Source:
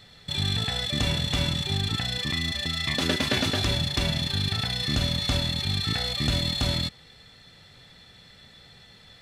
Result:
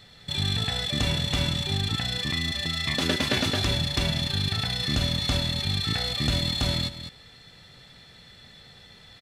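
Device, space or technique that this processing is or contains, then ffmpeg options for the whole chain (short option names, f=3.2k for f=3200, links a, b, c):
ducked delay: -filter_complex "[0:a]asplit=3[a][b][c];[b]adelay=203,volume=-5dB[d];[c]apad=whole_len=415118[e];[d][e]sidechaincompress=threshold=-36dB:ratio=6:attack=23:release=357[f];[a][f]amix=inputs=2:normalize=0"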